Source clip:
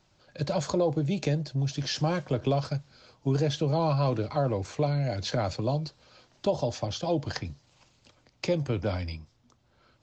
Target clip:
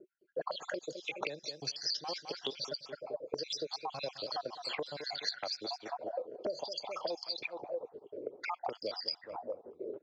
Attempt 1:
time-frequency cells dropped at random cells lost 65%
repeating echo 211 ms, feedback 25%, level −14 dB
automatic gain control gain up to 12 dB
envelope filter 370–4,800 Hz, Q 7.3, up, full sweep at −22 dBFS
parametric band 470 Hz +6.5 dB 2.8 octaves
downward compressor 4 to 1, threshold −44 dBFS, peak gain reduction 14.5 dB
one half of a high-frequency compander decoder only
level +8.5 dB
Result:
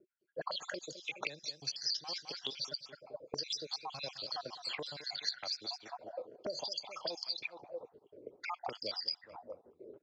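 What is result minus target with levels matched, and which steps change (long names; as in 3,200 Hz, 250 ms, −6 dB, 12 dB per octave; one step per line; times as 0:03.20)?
500 Hz band −5.5 dB
change: parametric band 470 Hz +18.5 dB 2.8 octaves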